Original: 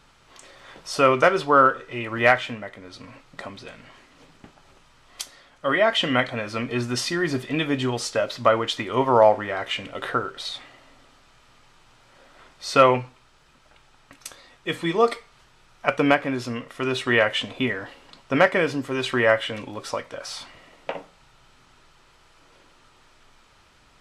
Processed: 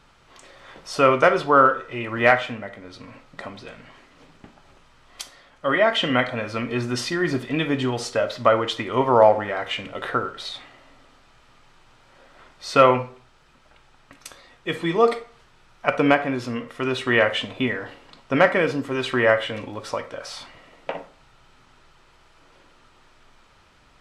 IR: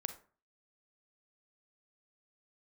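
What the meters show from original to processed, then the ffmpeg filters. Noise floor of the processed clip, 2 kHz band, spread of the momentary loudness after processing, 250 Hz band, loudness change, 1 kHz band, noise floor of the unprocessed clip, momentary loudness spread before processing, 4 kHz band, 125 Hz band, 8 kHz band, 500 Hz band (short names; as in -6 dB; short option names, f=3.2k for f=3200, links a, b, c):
-56 dBFS, +0.5 dB, 21 LU, +1.0 dB, +1.0 dB, +1.0 dB, -57 dBFS, 21 LU, -1.0 dB, +1.0 dB, -3.0 dB, +1.5 dB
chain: -filter_complex "[0:a]asplit=2[a][b];[b]highshelf=f=5.5k:g=-10[c];[1:a]atrim=start_sample=2205[d];[c][d]afir=irnorm=-1:irlink=0,volume=7.5dB[e];[a][e]amix=inputs=2:normalize=0,volume=-8.5dB"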